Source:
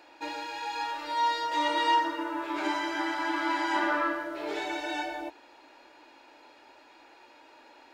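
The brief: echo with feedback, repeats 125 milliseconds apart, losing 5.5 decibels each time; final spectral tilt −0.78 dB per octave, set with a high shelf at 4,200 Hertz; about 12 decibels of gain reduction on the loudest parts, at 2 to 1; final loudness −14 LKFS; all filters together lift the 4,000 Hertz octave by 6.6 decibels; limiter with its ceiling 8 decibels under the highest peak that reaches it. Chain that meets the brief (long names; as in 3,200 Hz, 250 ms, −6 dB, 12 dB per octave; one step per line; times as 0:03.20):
parametric band 4,000 Hz +6.5 dB
high-shelf EQ 4,200 Hz +3.5 dB
downward compressor 2 to 1, threshold −42 dBFS
brickwall limiter −32 dBFS
repeating echo 125 ms, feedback 53%, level −5.5 dB
level +25.5 dB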